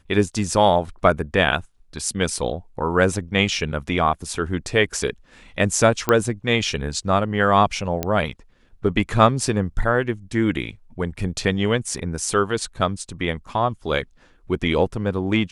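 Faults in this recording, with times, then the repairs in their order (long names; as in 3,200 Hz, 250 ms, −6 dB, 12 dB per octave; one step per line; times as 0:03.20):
0:06.09: click −5 dBFS
0:08.03: click −8 dBFS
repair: click removal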